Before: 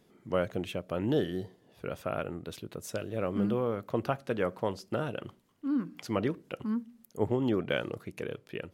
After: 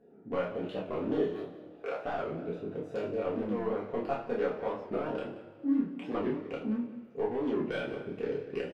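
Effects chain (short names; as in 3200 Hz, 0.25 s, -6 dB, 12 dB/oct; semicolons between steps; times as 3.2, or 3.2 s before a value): Wiener smoothing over 41 samples; 1.32–2.04 HPF 480 Hz 24 dB/oct; compressor 4:1, threshold -35 dBFS, peak gain reduction 11 dB; overdrive pedal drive 21 dB, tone 1100 Hz, clips at -18.5 dBFS; doubler 29 ms -4 dB; echo 0.18 s -15.5 dB; two-slope reverb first 0.37 s, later 2.4 s, from -19 dB, DRR -5 dB; record warp 45 rpm, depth 160 cents; gain -6 dB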